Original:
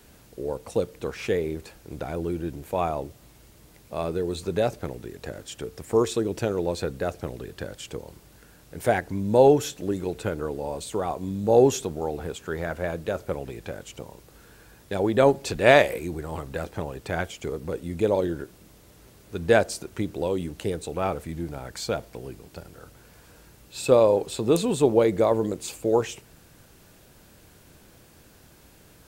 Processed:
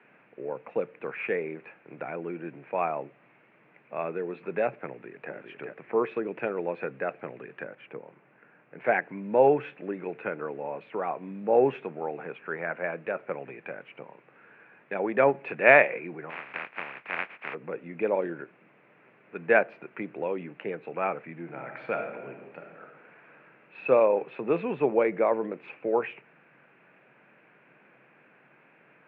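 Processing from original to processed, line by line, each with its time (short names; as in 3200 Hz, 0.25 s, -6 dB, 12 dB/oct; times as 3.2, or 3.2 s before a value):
4.89–5.33 echo throw 0.4 s, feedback 15%, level -4.5 dB
7.64–8.79 high shelf 2900 Hz -10 dB
16.29–17.53 spectral contrast lowered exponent 0.14
21.43–23.86 reverb throw, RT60 1.2 s, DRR 3 dB
whole clip: Chebyshev band-pass 130–2500 Hz, order 5; tilt +3.5 dB/oct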